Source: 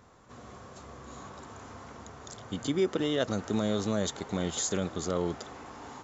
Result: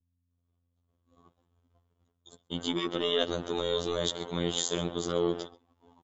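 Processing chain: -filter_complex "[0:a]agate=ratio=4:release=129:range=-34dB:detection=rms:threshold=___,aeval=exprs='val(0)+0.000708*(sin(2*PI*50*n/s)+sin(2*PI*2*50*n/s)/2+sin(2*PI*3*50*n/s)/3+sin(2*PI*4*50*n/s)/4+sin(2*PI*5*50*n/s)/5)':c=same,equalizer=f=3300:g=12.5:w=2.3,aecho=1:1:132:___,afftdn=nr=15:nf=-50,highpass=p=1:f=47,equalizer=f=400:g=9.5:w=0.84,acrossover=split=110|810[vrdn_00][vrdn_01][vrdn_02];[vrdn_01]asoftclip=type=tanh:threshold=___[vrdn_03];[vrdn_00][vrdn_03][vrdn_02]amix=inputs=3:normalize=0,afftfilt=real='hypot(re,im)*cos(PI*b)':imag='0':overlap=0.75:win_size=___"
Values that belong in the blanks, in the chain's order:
-39dB, 0.126, -22.5dB, 2048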